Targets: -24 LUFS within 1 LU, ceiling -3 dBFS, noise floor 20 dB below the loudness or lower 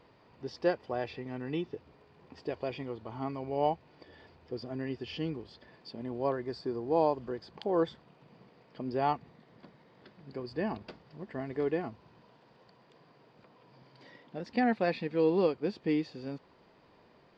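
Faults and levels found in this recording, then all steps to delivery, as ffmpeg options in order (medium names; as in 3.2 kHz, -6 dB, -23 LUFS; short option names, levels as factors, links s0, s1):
loudness -34.0 LUFS; peak level -15.0 dBFS; loudness target -24.0 LUFS
-> -af "volume=3.16"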